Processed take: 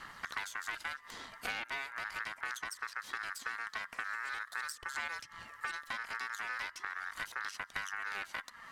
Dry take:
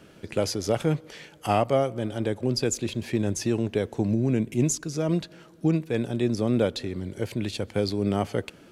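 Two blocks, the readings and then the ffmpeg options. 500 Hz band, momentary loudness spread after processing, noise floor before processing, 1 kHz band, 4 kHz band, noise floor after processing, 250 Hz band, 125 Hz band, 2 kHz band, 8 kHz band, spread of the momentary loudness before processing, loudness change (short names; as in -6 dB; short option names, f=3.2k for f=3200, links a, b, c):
-30.5 dB, 3 LU, -52 dBFS, -8.0 dB, -9.5 dB, -57 dBFS, -36.0 dB, -37.5 dB, +4.0 dB, -14.5 dB, 8 LU, -13.0 dB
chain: -filter_complex "[0:a]acrossover=split=190|1100[a][b][c];[a]acompressor=threshold=-40dB:ratio=4[d];[b]acompressor=threshold=-33dB:ratio=4[e];[c]acompressor=threshold=-49dB:ratio=4[f];[d][e][f]amix=inputs=3:normalize=0,aeval=exprs='0.106*(cos(1*acos(clip(val(0)/0.106,-1,1)))-cos(1*PI/2))+0.0266*(cos(4*acos(clip(val(0)/0.106,-1,1)))-cos(4*PI/2))+0.0075*(cos(8*acos(clip(val(0)/0.106,-1,1)))-cos(8*PI/2))':c=same,aeval=exprs='val(0)*sin(2*PI*1500*n/s)':c=same,aphaser=in_gain=1:out_gain=1:delay=4.5:decay=0.27:speed=0.4:type=sinusoidal,acrossover=split=2900[g][h];[g]acompressor=threshold=-42dB:ratio=6[i];[i][h]amix=inputs=2:normalize=0,volume=3dB"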